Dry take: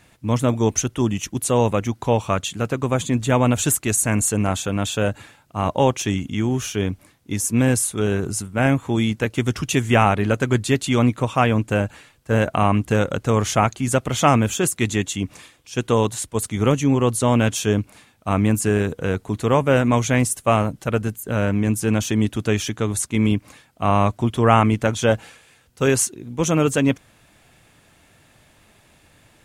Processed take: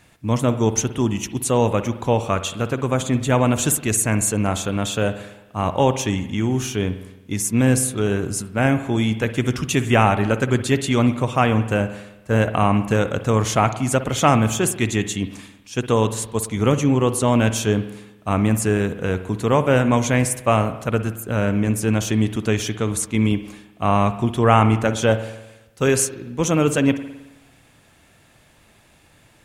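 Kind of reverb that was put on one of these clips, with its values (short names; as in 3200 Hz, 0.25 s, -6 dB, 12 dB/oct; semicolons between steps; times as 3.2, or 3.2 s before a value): spring tank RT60 1 s, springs 54 ms, chirp 25 ms, DRR 11 dB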